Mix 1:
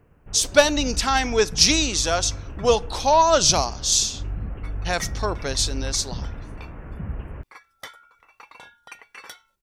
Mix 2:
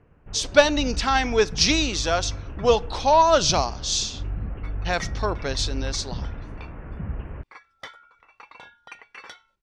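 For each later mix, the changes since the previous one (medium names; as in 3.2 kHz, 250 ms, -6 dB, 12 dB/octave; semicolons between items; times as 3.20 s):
master: add low-pass 4.6 kHz 12 dB/octave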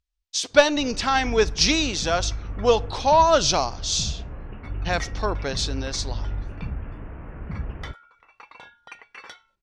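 first sound: entry +0.50 s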